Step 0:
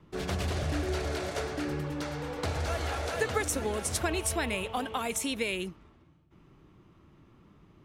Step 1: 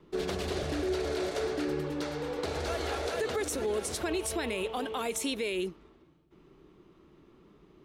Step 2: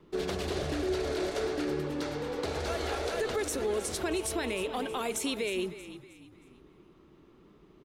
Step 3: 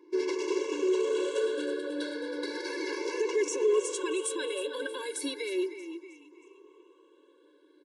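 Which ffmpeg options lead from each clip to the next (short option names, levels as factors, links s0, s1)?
-af "equalizer=f=100:t=o:w=0.67:g=-11,equalizer=f=400:t=o:w=0.67:g=9,equalizer=f=4000:t=o:w=0.67:g=4,alimiter=limit=0.0841:level=0:latency=1:release=43,volume=0.841"
-filter_complex "[0:a]asplit=5[s0][s1][s2][s3][s4];[s1]adelay=315,afreqshift=-40,volume=0.211[s5];[s2]adelay=630,afreqshift=-80,volume=0.0804[s6];[s3]adelay=945,afreqshift=-120,volume=0.0305[s7];[s4]adelay=1260,afreqshift=-160,volume=0.0116[s8];[s0][s5][s6][s7][s8]amix=inputs=5:normalize=0"
-af "afftfilt=real='re*pow(10,11/40*sin(2*PI*(0.75*log(max(b,1)*sr/1024/100)/log(2)-(0.35)*(pts-256)/sr)))':imag='im*pow(10,11/40*sin(2*PI*(0.75*log(max(b,1)*sr/1024/100)/log(2)-(0.35)*(pts-256)/sr)))':win_size=1024:overlap=0.75,aresample=22050,aresample=44100,afftfilt=real='re*eq(mod(floor(b*sr/1024/290),2),1)':imag='im*eq(mod(floor(b*sr/1024/290),2),1)':win_size=1024:overlap=0.75,volume=1.19"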